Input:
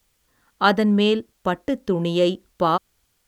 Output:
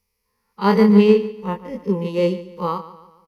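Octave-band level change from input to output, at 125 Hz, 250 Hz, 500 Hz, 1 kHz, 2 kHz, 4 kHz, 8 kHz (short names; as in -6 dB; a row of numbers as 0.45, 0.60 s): +3.5 dB, +4.5 dB, +4.0 dB, -2.0 dB, -3.5 dB, -7.0 dB, n/a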